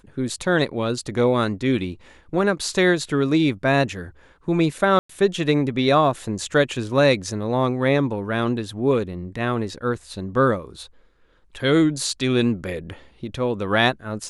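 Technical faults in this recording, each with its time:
0:04.99–0:05.09: drop-out 104 ms

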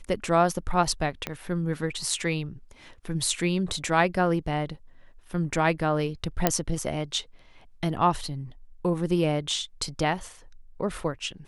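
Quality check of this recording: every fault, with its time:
0:01.27: click −14 dBFS
0:06.47: click −4 dBFS

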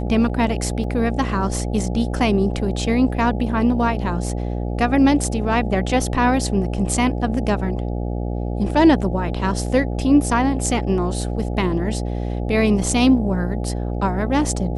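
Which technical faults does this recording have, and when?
mains buzz 60 Hz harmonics 14 −24 dBFS
0:00.84: drop-out 2.4 ms

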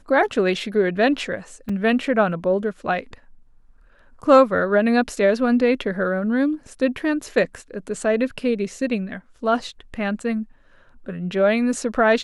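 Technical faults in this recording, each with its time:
0:01.69: drop-out 4.5 ms

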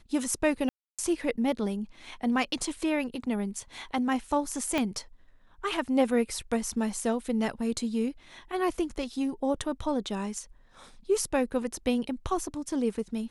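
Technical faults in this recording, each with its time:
0:00.69–0:00.99: drop-out 296 ms
0:04.78: click −14 dBFS

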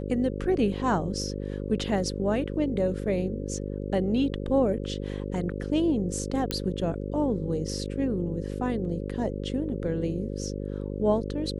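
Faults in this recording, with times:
mains buzz 50 Hz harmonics 11 −33 dBFS
0:06.51: click −12 dBFS

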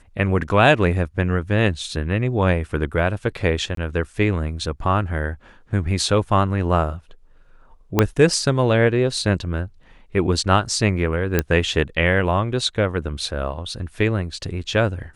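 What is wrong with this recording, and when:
0:03.75–0:03.77: drop-out 23 ms
0:07.99: click −1 dBFS
0:11.39: click −4 dBFS

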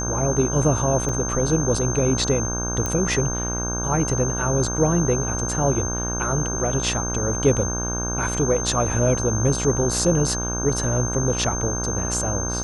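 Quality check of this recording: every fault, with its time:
mains buzz 60 Hz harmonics 27 −28 dBFS
whistle 6,300 Hz −27 dBFS
0:01.09: drop-out 3.1 ms
0:02.86: click −11 dBFS

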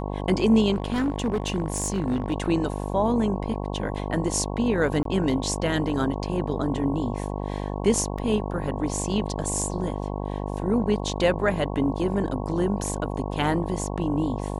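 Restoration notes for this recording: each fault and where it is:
mains buzz 50 Hz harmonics 22 −30 dBFS
0:00.73–0:02.33: clipping −20 dBFS
0:05.03–0:05.05: drop-out 23 ms
0:08.18–0:08.19: drop-out 5 ms

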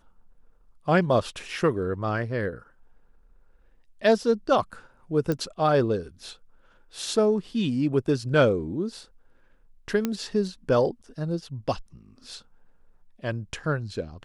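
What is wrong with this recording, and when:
0:05.32: click −15 dBFS
0:10.05: click −12 dBFS

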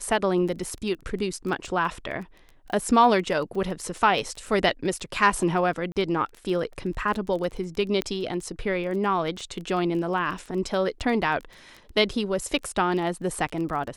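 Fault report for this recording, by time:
surface crackle 15 per second −32 dBFS
0:05.92–0:05.96: drop-out 39 ms
0:08.02: click −12 dBFS

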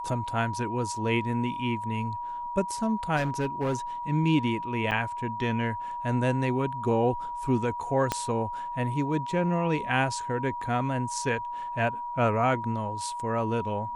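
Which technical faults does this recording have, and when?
whistle 960 Hz −32 dBFS
0:03.16–0:03.75: clipping −23 dBFS
0:04.91–0:04.92: drop-out 7.8 ms
0:08.12: click −11 dBFS

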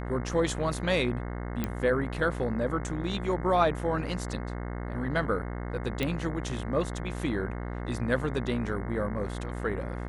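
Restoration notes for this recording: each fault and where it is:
mains buzz 60 Hz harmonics 36 −35 dBFS
0:01.64: click −15 dBFS
0:06.03: click −16 dBFS

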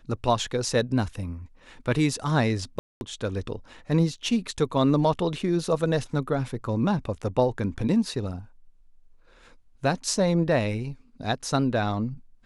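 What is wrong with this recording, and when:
0:02.79–0:03.01: drop-out 221 ms

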